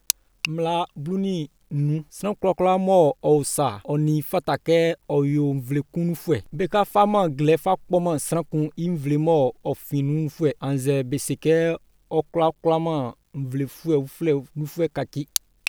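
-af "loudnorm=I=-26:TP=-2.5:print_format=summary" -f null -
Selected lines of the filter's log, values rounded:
Input Integrated:    -23.6 LUFS
Input True Peak:      -1.1 dBTP
Input LRA:             4.1 LU
Input Threshold:     -33.6 LUFS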